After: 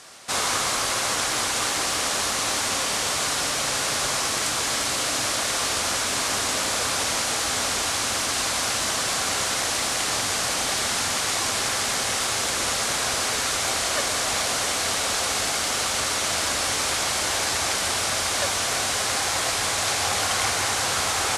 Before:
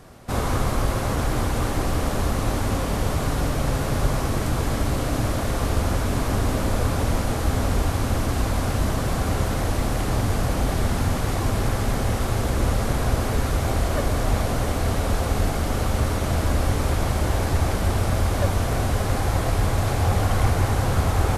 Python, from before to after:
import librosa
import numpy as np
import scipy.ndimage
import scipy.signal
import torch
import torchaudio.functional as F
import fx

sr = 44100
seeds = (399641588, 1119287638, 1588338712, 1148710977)

y = fx.weighting(x, sr, curve='ITU-R 468')
y = F.gain(torch.from_numpy(y), 1.5).numpy()